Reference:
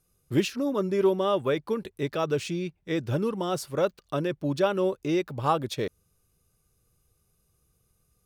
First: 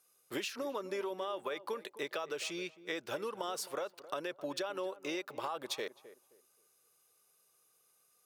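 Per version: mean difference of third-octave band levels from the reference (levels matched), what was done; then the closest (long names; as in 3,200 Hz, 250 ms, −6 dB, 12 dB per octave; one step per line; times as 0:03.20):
8.5 dB: high-pass filter 620 Hz 12 dB per octave
brickwall limiter −23.5 dBFS, peak gain reduction 11 dB
downward compressor, threshold −38 dBFS, peak gain reduction 10 dB
on a send: tape delay 263 ms, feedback 29%, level −13.5 dB, low-pass 1,000 Hz
on the sum: level +3 dB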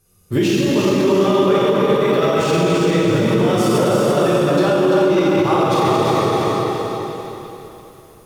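11.5 dB: tape delay 268 ms, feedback 47%, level −5 dB, low-pass 2,400 Hz
dense smooth reverb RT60 3.3 s, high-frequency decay 0.95×, DRR −8.5 dB
boost into a limiter +15 dB
feedback echo at a low word length 341 ms, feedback 35%, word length 7 bits, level −6 dB
level −7.5 dB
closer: first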